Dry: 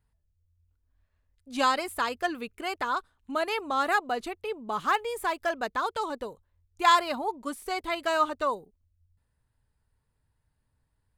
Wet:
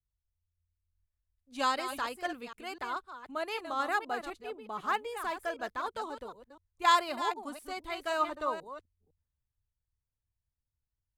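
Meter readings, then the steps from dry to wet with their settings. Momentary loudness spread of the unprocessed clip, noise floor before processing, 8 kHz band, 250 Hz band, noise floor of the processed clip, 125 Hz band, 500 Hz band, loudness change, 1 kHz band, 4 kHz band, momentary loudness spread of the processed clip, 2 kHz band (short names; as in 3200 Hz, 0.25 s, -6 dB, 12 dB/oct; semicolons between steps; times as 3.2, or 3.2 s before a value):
10 LU, -76 dBFS, -5.0 dB, -6.5 dB, under -85 dBFS, n/a, -6.0 dB, -5.0 dB, -5.0 dB, -4.5 dB, 13 LU, -5.5 dB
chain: reverse delay 0.253 s, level -8 dB; three-band expander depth 40%; gain -6.5 dB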